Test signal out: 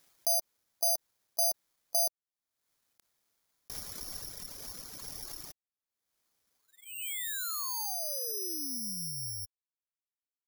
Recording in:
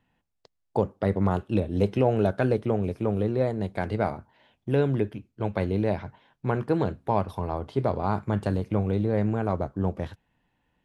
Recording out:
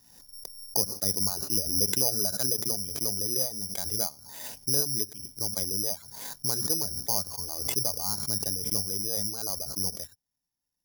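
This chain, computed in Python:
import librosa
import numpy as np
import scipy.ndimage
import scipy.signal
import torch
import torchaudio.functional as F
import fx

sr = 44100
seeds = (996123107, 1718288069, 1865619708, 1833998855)

y = fx.high_shelf(x, sr, hz=3500.0, db=-7.5)
y = (np.kron(scipy.signal.resample_poly(y, 1, 8), np.eye(8)[0]) * 8)[:len(y)]
y = fx.dereverb_blind(y, sr, rt60_s=1.7)
y = fx.pre_swell(y, sr, db_per_s=49.0)
y = y * librosa.db_to_amplitude(-12.0)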